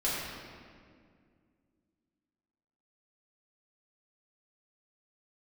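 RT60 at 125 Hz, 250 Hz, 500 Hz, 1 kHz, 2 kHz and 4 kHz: 2.7 s, 3.0 s, 2.3 s, 1.9 s, 1.8 s, 1.4 s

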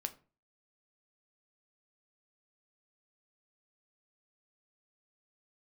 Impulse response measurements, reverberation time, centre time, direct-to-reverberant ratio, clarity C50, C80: 0.35 s, 6 ms, 8.0 dB, 17.0 dB, 22.0 dB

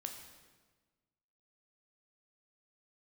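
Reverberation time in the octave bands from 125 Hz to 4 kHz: 1.7 s, 1.6 s, 1.4 s, 1.3 s, 1.2 s, 1.1 s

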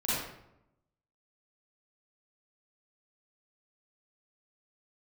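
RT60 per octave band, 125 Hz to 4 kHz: 1.1 s, 1.0 s, 0.90 s, 0.80 s, 0.65 s, 0.50 s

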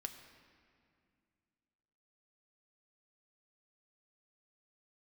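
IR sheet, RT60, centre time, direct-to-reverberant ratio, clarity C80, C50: 2.3 s, 26 ms, 5.0 dB, 9.5 dB, 9.0 dB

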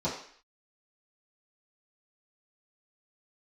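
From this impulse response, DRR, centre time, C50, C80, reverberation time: -11.0 dB, 34 ms, 5.5 dB, 9.0 dB, 0.55 s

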